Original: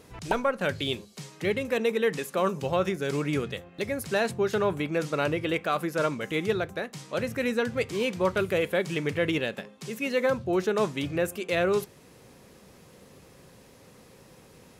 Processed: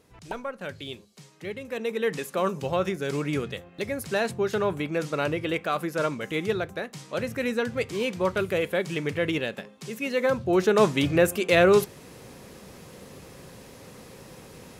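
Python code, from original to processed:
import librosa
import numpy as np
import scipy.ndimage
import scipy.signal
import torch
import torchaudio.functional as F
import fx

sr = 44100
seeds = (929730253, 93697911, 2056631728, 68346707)

y = fx.gain(x, sr, db=fx.line((1.59, -8.0), (2.12, 0.0), (10.15, 0.0), (10.88, 7.0)))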